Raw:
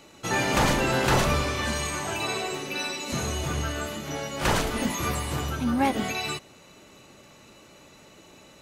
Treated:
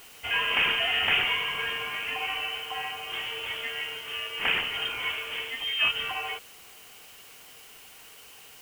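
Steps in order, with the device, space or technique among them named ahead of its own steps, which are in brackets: scrambled radio voice (BPF 330–3200 Hz; inverted band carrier 3400 Hz; white noise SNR 20 dB)

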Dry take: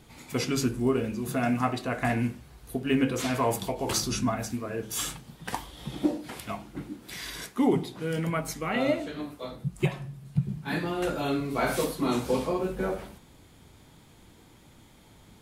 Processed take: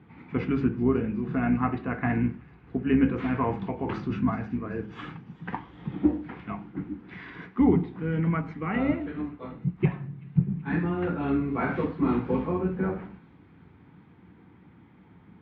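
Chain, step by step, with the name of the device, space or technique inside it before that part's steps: thin delay 0.381 s, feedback 70%, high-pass 4400 Hz, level -14 dB; sub-octave bass pedal (octaver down 2 oct, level -6 dB; speaker cabinet 73–2200 Hz, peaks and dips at 180 Hz +8 dB, 290 Hz +4 dB, 600 Hz -10 dB)

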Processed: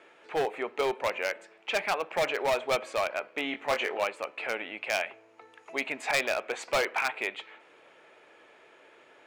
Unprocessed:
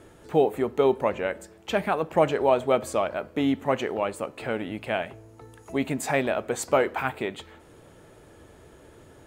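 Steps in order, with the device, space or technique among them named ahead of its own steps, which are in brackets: megaphone (BPF 540–2500 Hz; bell 2400 Hz +8 dB 0.5 oct; hard clip -21 dBFS, distortion -11 dB); high shelf 3200 Hz +12 dB; 3.51–4.04 doubler 21 ms -5 dB; gain -2 dB

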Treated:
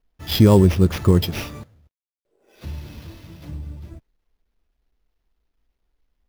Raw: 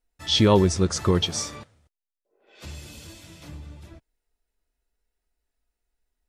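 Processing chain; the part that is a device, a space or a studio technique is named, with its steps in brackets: early companding sampler (sample-rate reducer 8300 Hz, jitter 0%; companded quantiser 8-bit); low shelf 420 Hz +11.5 dB; gain -3 dB

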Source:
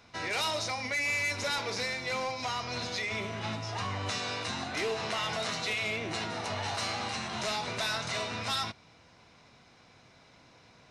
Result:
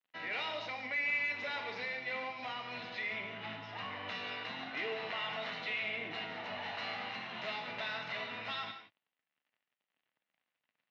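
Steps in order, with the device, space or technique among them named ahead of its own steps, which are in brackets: HPF 64 Hz 12 dB/oct; bell 1300 Hz -2.5 dB 1.7 oct; blown loudspeaker (crossover distortion -52.5 dBFS; speaker cabinet 200–3500 Hz, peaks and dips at 390 Hz -7 dB, 1900 Hz +6 dB, 2800 Hz +4 dB); non-linear reverb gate 0.2 s flat, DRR 6 dB; gain -5.5 dB

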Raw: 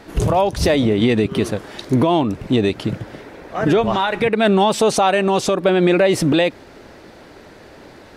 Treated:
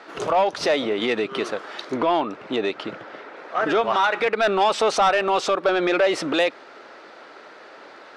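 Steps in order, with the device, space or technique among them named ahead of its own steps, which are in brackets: intercom (BPF 480–4900 Hz; bell 1300 Hz +7.5 dB 0.36 oct; soft clip -11 dBFS, distortion -16 dB); 1.97–3.37 high shelf 5700 Hz -8 dB

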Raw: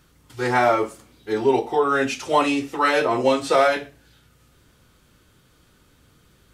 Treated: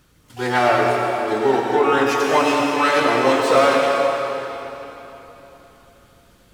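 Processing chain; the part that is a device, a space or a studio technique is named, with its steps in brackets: shimmer-style reverb (harmoniser +12 st -11 dB; reverb RT60 3.5 s, pre-delay 85 ms, DRR -0.5 dB)

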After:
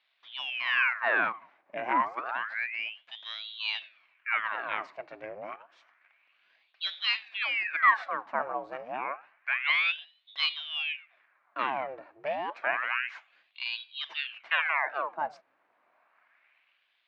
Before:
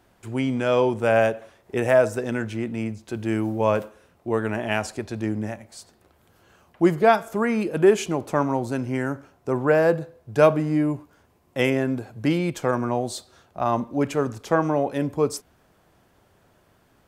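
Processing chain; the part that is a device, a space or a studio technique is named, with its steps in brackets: voice changer toy (ring modulator with a swept carrier 1900 Hz, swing 90%, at 0.29 Hz; speaker cabinet 430–3500 Hz, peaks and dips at 440 Hz -7 dB, 670 Hz +6 dB, 1100 Hz +5 dB, 1600 Hz +5 dB, 2300 Hz +6 dB, 3300 Hz -5 dB); gain -7.5 dB

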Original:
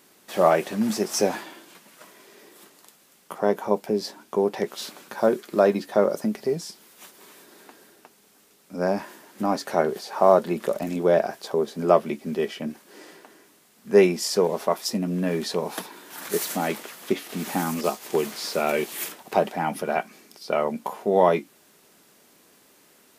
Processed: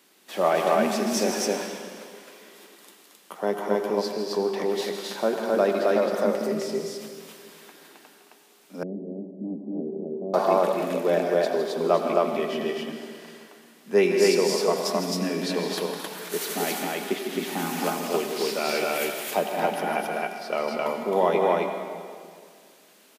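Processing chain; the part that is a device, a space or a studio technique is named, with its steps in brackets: stadium PA (HPF 170 Hz 24 dB/oct; bell 3100 Hz +4.5 dB 1.4 oct; loudspeakers at several distances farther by 54 m -9 dB, 75 m -12 dB, 91 m -1 dB; reverb RT60 2.1 s, pre-delay 77 ms, DRR 6 dB); 8.83–10.34 inverse Chebyshev low-pass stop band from 1300 Hz, stop band 60 dB; gain -4.5 dB

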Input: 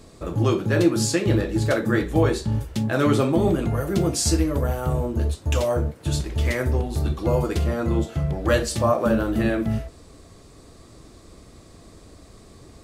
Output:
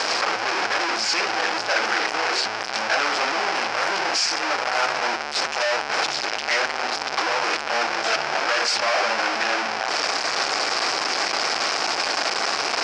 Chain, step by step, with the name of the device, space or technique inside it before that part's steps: home computer beeper (infinite clipping; speaker cabinet 750–5500 Hz, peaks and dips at 780 Hz +6 dB, 1500 Hz +5 dB, 2400 Hz +4 dB, 3600 Hz -5 dB, 5200 Hz +8 dB); gain +4 dB

